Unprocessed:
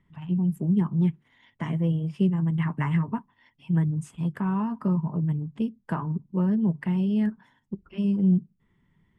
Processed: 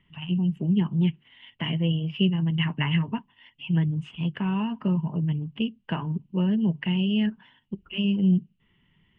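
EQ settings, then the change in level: dynamic bell 1.2 kHz, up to -6 dB, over -51 dBFS, Q 2.6; resonant low-pass 2.9 kHz, resonance Q 11; 0.0 dB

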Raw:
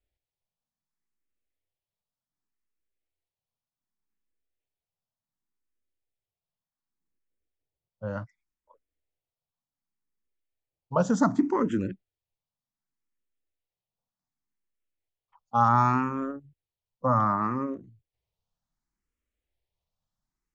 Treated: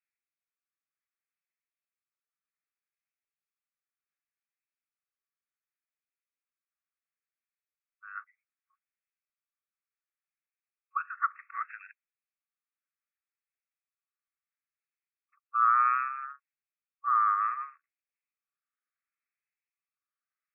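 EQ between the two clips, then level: brick-wall FIR band-pass 1.1–2.7 kHz; +2.0 dB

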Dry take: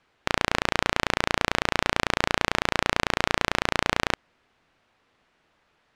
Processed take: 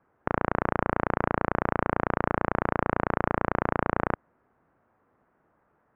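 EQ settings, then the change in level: high-pass 96 Hz 6 dB/octave; low-pass 1.5 kHz 24 dB/octave; bass shelf 390 Hz +5 dB; 0.0 dB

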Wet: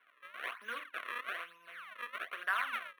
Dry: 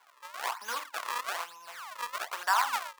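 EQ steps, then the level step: boxcar filter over 6 samples; static phaser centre 2.1 kHz, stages 4; 0.0 dB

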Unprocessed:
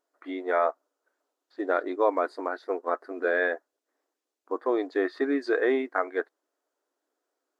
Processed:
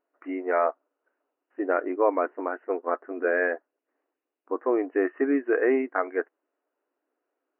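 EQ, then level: brick-wall FIR band-pass 160–3000 Hz; bass shelf 220 Hz +8 dB; 0.0 dB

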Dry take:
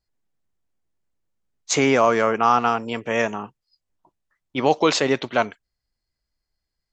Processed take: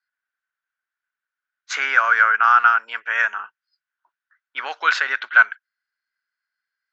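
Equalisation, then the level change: resonant high-pass 1.5 kHz, resonance Q 9.8; distance through air 140 m; -1.0 dB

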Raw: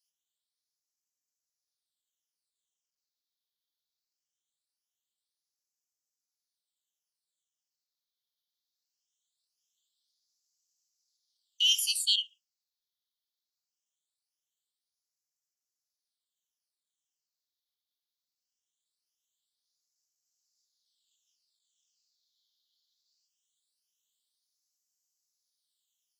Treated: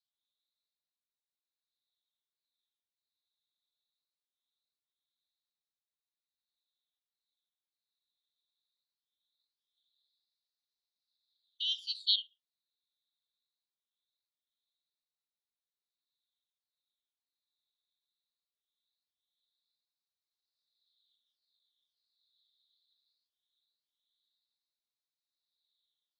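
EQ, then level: Butterworth band-pass 3.8 kHz, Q 6; +6.0 dB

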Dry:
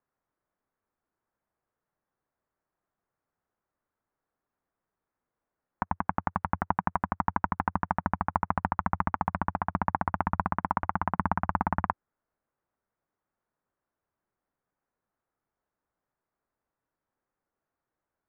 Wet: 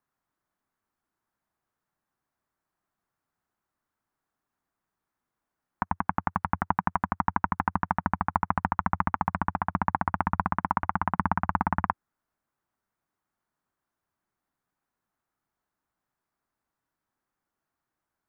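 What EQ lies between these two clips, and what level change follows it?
bass shelf 100 Hz -4 dB; peaking EQ 500 Hz -8 dB 0.74 oct; +3.0 dB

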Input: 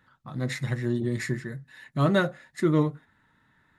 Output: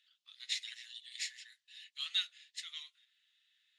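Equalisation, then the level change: Chebyshev high-pass 2.9 kHz, order 4; tape spacing loss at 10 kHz 30 dB; treble shelf 5.5 kHz +9 dB; +14.0 dB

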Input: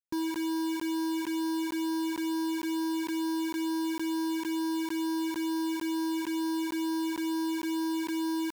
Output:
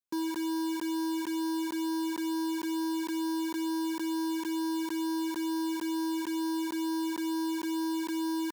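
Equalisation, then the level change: high-pass 220 Hz; peaking EQ 2.4 kHz -4 dB 0.6 oct; band-stop 1.8 kHz, Q 11; 0.0 dB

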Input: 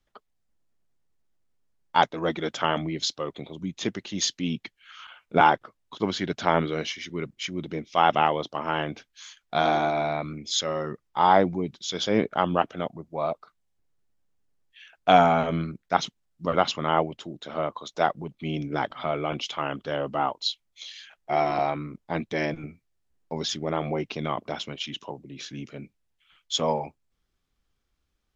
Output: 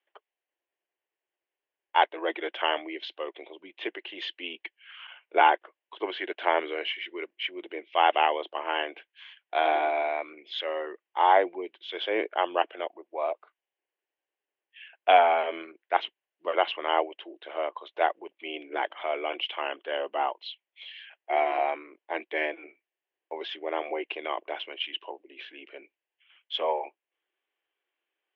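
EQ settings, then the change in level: Chebyshev band-pass 340–3000 Hz, order 4; tilt shelf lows -4.5 dB, about 810 Hz; peaking EQ 1.3 kHz -10.5 dB 0.29 oct; 0.0 dB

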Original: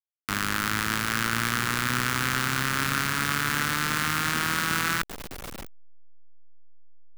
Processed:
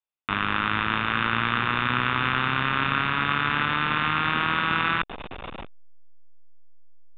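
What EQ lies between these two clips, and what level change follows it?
rippled Chebyshev low-pass 3.7 kHz, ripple 6 dB; +6.5 dB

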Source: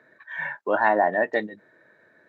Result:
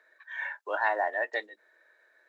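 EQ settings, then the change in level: Bessel high-pass 590 Hz, order 8; treble shelf 2.4 kHz +8.5 dB; -7.0 dB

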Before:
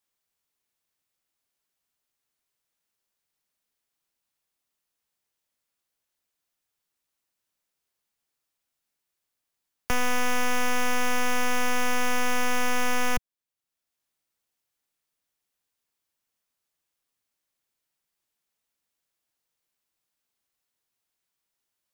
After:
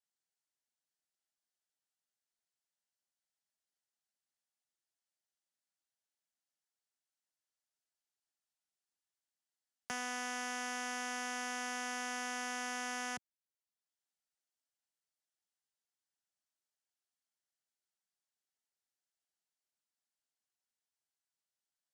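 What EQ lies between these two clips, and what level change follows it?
cabinet simulation 250–9600 Hz, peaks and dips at 310 Hz -8 dB, 470 Hz -10 dB, 1.1 kHz -9 dB, 2.4 kHz -8 dB, 3.6 kHz -3 dB; -8.5 dB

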